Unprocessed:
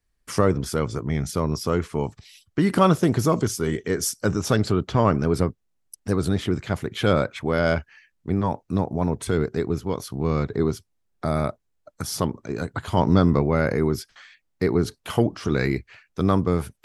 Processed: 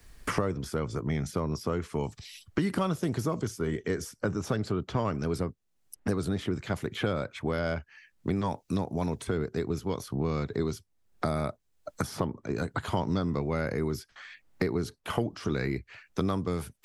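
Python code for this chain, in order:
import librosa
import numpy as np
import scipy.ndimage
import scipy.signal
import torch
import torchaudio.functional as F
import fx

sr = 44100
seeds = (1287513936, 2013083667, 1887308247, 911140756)

y = fx.band_squash(x, sr, depth_pct=100)
y = y * librosa.db_to_amplitude(-8.5)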